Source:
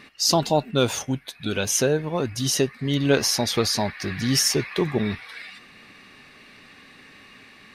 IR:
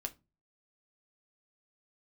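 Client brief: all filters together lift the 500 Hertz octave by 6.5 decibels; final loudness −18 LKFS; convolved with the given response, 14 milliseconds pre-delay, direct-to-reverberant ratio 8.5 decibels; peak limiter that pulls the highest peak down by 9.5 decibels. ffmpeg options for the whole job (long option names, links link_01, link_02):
-filter_complex "[0:a]equalizer=frequency=500:width_type=o:gain=8,alimiter=limit=-12.5dB:level=0:latency=1,asplit=2[link_01][link_02];[1:a]atrim=start_sample=2205,adelay=14[link_03];[link_02][link_03]afir=irnorm=-1:irlink=0,volume=-7.5dB[link_04];[link_01][link_04]amix=inputs=2:normalize=0,volume=4.5dB"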